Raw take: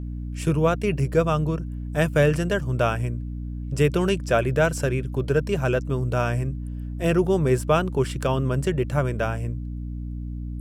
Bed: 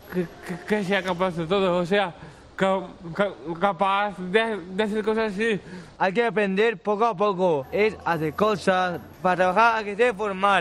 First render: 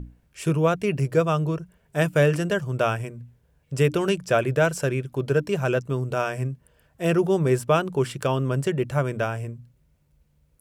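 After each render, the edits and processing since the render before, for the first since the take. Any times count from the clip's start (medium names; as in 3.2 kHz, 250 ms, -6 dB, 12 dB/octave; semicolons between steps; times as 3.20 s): hum notches 60/120/180/240/300 Hz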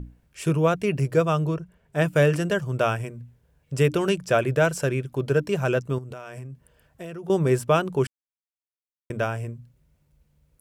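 1.54–2.07 s: treble shelf 5.2 kHz -7.5 dB; 5.98–7.30 s: compression 16:1, threshold -33 dBFS; 8.07–9.10 s: mute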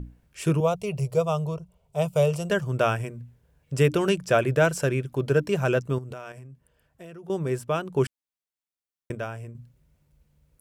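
0.60–2.50 s: static phaser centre 700 Hz, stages 4; 6.32–7.96 s: gain -6.5 dB; 9.15–9.55 s: gain -7 dB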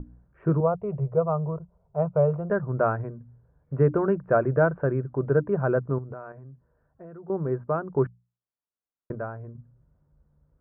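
steep low-pass 1.5 kHz 36 dB/octave; hum notches 60/120/180 Hz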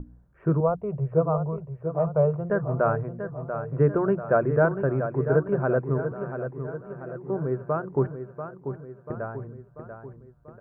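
feedback delay 689 ms, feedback 54%, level -9 dB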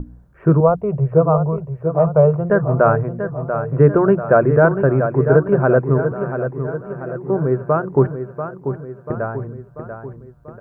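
trim +9.5 dB; peak limiter -2 dBFS, peak gain reduction 3 dB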